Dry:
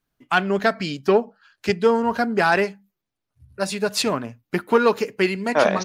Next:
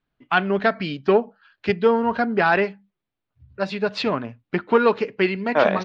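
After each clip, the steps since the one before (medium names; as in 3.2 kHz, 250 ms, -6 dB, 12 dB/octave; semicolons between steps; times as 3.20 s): low-pass 3.9 kHz 24 dB/octave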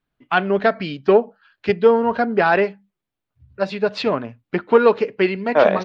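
dynamic bell 520 Hz, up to +5 dB, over -30 dBFS, Q 1.2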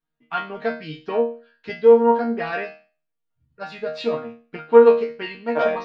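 chord resonator D#3 fifth, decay 0.37 s; trim +8.5 dB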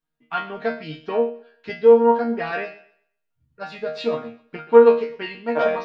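thinning echo 128 ms, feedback 27%, high-pass 190 Hz, level -18 dB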